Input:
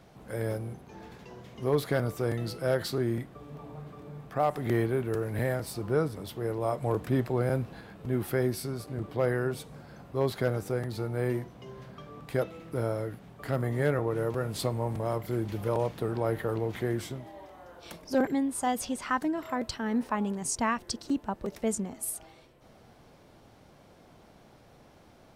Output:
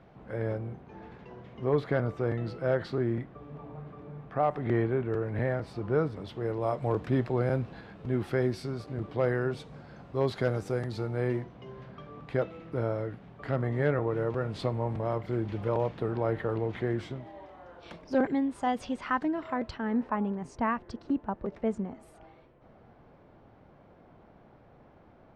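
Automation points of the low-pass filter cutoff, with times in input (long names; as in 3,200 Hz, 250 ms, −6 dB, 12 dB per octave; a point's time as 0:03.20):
0:05.52 2,400 Hz
0:06.74 4,400 Hz
0:09.97 4,400 Hz
0:10.77 7,400 Hz
0:11.52 3,200 Hz
0:19.48 3,200 Hz
0:20.06 1,800 Hz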